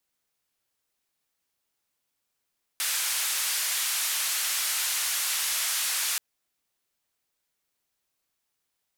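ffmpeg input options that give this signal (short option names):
-f lavfi -i "anoisesrc=c=white:d=3.38:r=44100:seed=1,highpass=f=1300,lowpass=f=13000,volume=-20.4dB"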